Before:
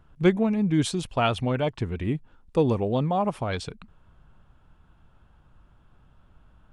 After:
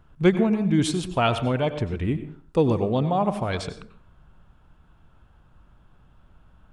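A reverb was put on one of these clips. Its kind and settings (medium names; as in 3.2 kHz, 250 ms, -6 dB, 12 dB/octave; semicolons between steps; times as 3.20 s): plate-style reverb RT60 0.5 s, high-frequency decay 0.6×, pre-delay 80 ms, DRR 10.5 dB; trim +1.5 dB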